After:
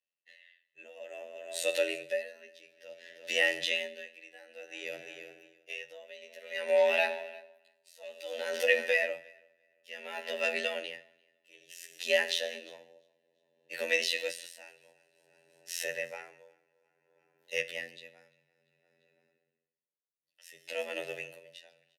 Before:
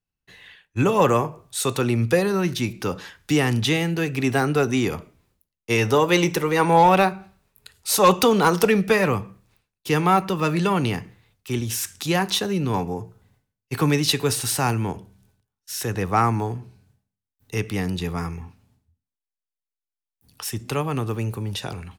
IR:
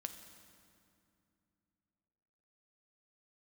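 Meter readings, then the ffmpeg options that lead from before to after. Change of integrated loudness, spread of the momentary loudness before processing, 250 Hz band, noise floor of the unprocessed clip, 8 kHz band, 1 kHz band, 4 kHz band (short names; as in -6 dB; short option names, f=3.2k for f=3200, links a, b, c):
-10.0 dB, 14 LU, -30.5 dB, under -85 dBFS, -15.0 dB, -23.5 dB, -8.5 dB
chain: -filter_complex "[0:a]aecho=1:1:344|688|1032:0.126|0.0365|0.0106,asplit=2[a][b];[1:a]atrim=start_sample=2205,asetrate=48510,aresample=44100[c];[b][c]afir=irnorm=-1:irlink=0,volume=4.5dB[d];[a][d]amix=inputs=2:normalize=0,flanger=delay=6.6:depth=7.1:regen=80:speed=0.34:shape=sinusoidal,asubboost=boost=5.5:cutoff=63,afftfilt=real='hypot(re,im)*cos(PI*b)':imag='0':win_size=2048:overlap=0.75,alimiter=limit=-6dB:level=0:latency=1:release=105,asplit=3[e][f][g];[e]bandpass=f=530:t=q:w=8,volume=0dB[h];[f]bandpass=f=1.84k:t=q:w=8,volume=-6dB[i];[g]bandpass=f=2.48k:t=q:w=8,volume=-9dB[j];[h][i][j]amix=inputs=3:normalize=0,afreqshift=60,crystalizer=i=9.5:c=0,aeval=exprs='val(0)*pow(10,-24*(0.5-0.5*cos(2*PI*0.57*n/s))/20)':c=same,volume=2.5dB"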